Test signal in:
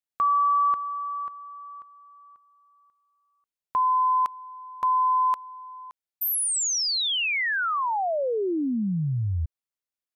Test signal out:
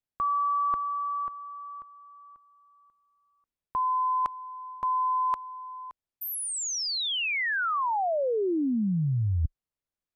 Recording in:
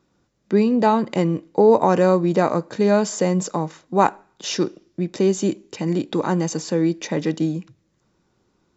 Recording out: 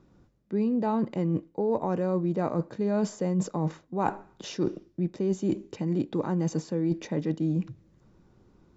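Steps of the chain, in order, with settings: tilt -2.5 dB/oct; reverse; compressor 6:1, threshold -26 dBFS; reverse; gain +1 dB

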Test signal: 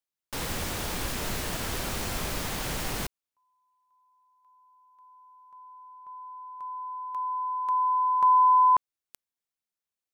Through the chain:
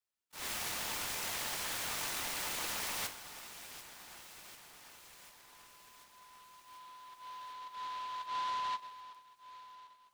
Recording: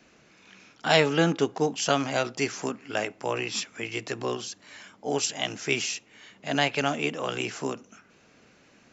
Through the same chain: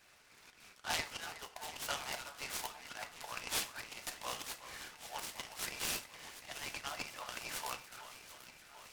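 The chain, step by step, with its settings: Bessel high-pass 1100 Hz, order 8; high shelf 4600 Hz +3 dB; harmonic-percussive split harmonic -17 dB; dynamic EQ 1500 Hz, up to -3 dB, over -52 dBFS, Q 2.8; compressor 6:1, threshold -34 dBFS; auto swell 0.141 s; echo with dull and thin repeats by turns 0.371 s, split 2100 Hz, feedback 82%, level -11.5 dB; FDN reverb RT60 0.38 s, high-frequency decay 0.9×, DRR 5 dB; noise-modulated delay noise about 2300 Hz, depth 0.048 ms; gain +1 dB

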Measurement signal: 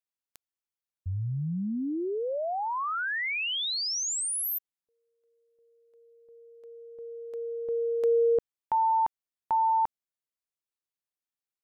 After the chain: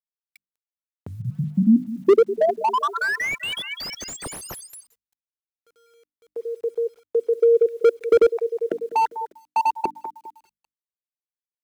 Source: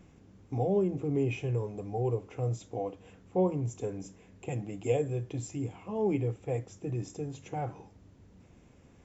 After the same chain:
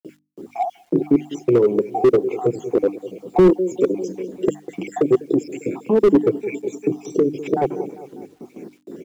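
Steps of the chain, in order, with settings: random spectral dropouts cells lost 62%; low shelf 470 Hz +11 dB; small resonant body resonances 370/2300 Hz, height 13 dB, ringing for 30 ms; on a send: feedback echo 0.199 s, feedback 57%, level -19 dB; on the sum: gate with hold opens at -41 dBFS, closes at -48 dBFS, hold 44 ms, range -22 dB; HPF 200 Hz 24 dB/oct; in parallel at +3 dB: compressor 8:1, threshold -32 dBFS; on the sum: bit-crush 11-bit; notches 50/100/150/200/250/300 Hz; slew limiter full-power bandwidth 67 Hz; gain +6 dB

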